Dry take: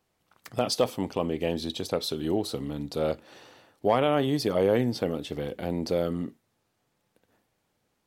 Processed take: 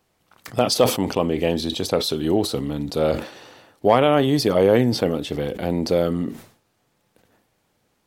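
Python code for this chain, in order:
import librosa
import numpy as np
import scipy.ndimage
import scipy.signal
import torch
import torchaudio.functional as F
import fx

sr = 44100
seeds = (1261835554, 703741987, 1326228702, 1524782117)

y = fx.sustainer(x, sr, db_per_s=120.0)
y = y * 10.0 ** (7.0 / 20.0)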